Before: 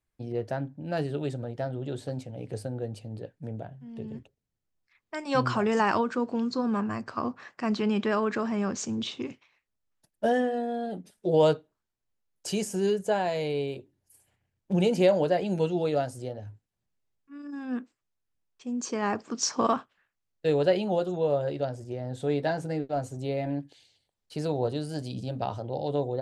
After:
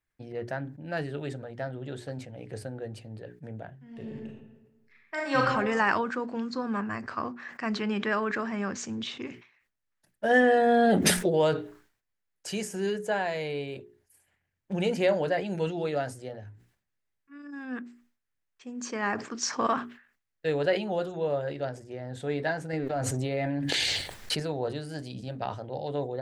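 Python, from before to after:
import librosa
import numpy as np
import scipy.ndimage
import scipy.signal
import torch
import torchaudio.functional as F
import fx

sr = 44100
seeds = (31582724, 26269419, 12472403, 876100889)

y = fx.reverb_throw(x, sr, start_s=3.84, length_s=1.55, rt60_s=1.2, drr_db=-1.5)
y = fx.env_flatten(y, sr, amount_pct=100, at=(10.29, 11.28), fade=0.02)
y = fx.env_flatten(y, sr, amount_pct=100, at=(22.73, 24.4))
y = fx.peak_eq(y, sr, hz=1800.0, db=9.0, octaves=0.95)
y = fx.hum_notches(y, sr, base_hz=60, count=7)
y = fx.sustainer(y, sr, db_per_s=120.0)
y = y * librosa.db_to_amplitude(-3.5)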